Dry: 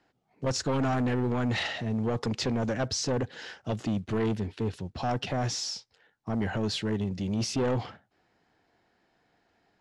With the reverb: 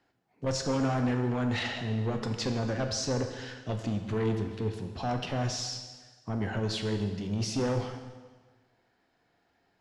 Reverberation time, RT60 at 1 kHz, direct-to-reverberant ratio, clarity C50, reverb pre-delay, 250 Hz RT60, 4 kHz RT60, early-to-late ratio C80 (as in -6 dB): 1.4 s, 1.4 s, 5.0 dB, 7.0 dB, 4 ms, 1.4 s, 1.3 s, 8.5 dB